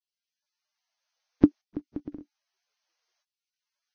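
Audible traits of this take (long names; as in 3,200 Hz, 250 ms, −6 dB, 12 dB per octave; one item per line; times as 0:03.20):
tremolo saw up 0.62 Hz, depth 85%
Ogg Vorbis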